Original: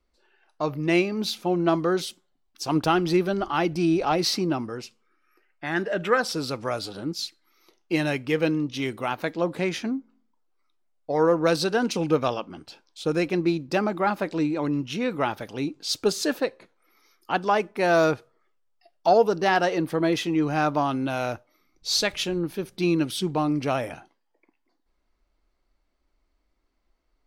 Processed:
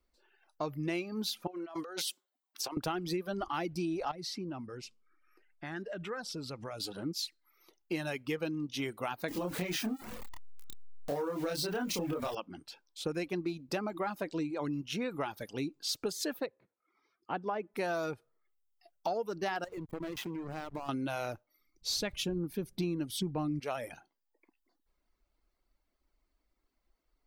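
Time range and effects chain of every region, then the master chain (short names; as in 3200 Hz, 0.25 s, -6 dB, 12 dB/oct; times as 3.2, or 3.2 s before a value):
1.47–2.77 HPF 460 Hz + negative-ratio compressor -35 dBFS
4.11–6.8 LPF 8900 Hz + low shelf 190 Hz +8 dB + compressor 2.5:1, threshold -37 dBFS
9.28–12.35 zero-crossing step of -32 dBFS + compressor 3:1, threshold -24 dBFS + doubler 28 ms -2.5 dB
16.46–17.74 HPF 48 Hz + tape spacing loss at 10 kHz 32 dB
19.64–20.89 compressor 8:1, threshold -28 dBFS + backlash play -29.5 dBFS
21.89–23.6 low shelf 280 Hz +12 dB + notch 1300 Hz, Q 20
whole clip: reverb removal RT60 0.62 s; high shelf 12000 Hz +11.5 dB; compressor 6:1, threshold -27 dBFS; gain -4.5 dB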